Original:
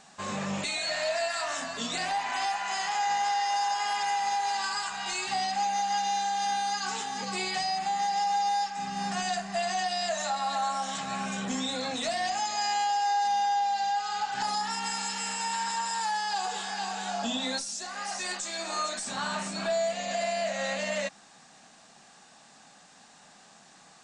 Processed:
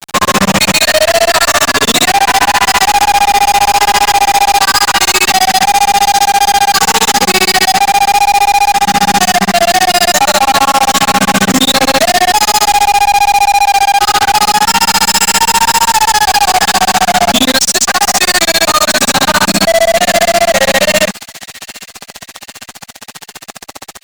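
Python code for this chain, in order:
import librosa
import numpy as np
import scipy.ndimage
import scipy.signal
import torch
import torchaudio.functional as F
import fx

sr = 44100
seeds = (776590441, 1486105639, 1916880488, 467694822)

p1 = fx.hum_notches(x, sr, base_hz=50, count=4)
p2 = fx.granulator(p1, sr, seeds[0], grain_ms=59.0, per_s=15.0, spray_ms=100.0, spread_st=0)
p3 = fx.fuzz(p2, sr, gain_db=47.0, gate_db=-53.0)
p4 = p3 + fx.echo_wet_highpass(p3, sr, ms=801, feedback_pct=56, hz=2200.0, wet_db=-18.5, dry=0)
y = p4 * librosa.db_to_amplitude(7.0)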